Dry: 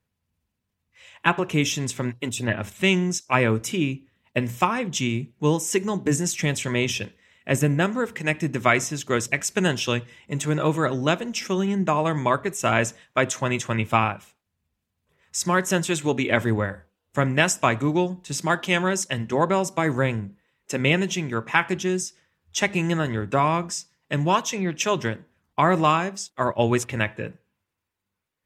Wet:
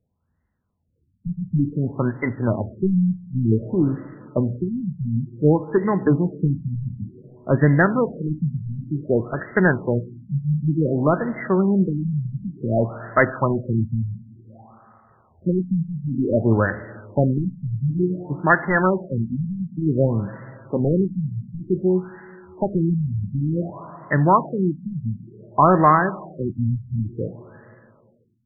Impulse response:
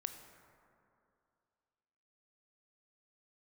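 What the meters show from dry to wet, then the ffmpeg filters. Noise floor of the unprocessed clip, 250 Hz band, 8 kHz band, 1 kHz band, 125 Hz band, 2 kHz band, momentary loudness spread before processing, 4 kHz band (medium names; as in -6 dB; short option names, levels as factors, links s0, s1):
-80 dBFS, +4.0 dB, under -40 dB, +0.5 dB, +5.0 dB, -2.0 dB, 8 LU, under -40 dB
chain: -filter_complex "[0:a]lowpass=f=2700:t=q:w=6.9,acontrast=26,asplit=2[s0][s1];[1:a]atrim=start_sample=2205[s2];[s1][s2]afir=irnorm=-1:irlink=0,volume=0.631[s3];[s0][s3]amix=inputs=2:normalize=0,afftfilt=real='re*lt(b*sr/1024,210*pow(2100/210,0.5+0.5*sin(2*PI*0.55*pts/sr)))':imag='im*lt(b*sr/1024,210*pow(2100/210,0.5+0.5*sin(2*PI*0.55*pts/sr)))':win_size=1024:overlap=0.75,volume=0.708"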